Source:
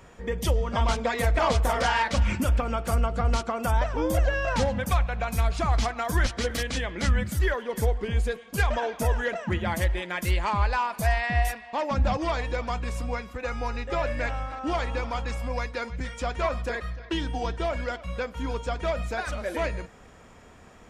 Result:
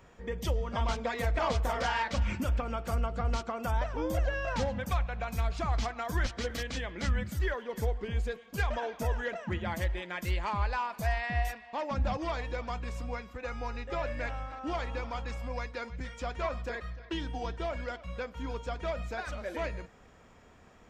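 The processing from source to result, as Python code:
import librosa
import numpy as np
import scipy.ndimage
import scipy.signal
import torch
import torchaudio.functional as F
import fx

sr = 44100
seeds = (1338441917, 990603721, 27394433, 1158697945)

y = fx.peak_eq(x, sr, hz=10000.0, db=-10.0, octaves=0.49)
y = y * 10.0 ** (-6.5 / 20.0)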